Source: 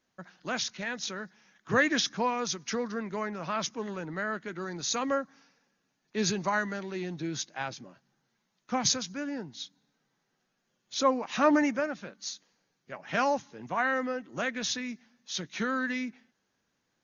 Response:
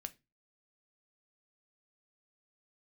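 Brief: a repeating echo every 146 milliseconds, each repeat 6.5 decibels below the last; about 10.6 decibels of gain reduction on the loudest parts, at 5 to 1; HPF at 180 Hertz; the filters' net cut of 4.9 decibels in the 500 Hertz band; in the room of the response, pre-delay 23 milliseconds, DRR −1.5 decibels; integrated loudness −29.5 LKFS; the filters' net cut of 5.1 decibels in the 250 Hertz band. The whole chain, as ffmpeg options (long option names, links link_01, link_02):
-filter_complex "[0:a]highpass=180,equalizer=frequency=250:width_type=o:gain=-3.5,equalizer=frequency=500:width_type=o:gain=-5,acompressor=threshold=-33dB:ratio=5,aecho=1:1:146|292|438|584|730|876:0.473|0.222|0.105|0.0491|0.0231|0.0109,asplit=2[link_01][link_02];[1:a]atrim=start_sample=2205,adelay=23[link_03];[link_02][link_03]afir=irnorm=-1:irlink=0,volume=5dB[link_04];[link_01][link_04]amix=inputs=2:normalize=0,volume=4.5dB"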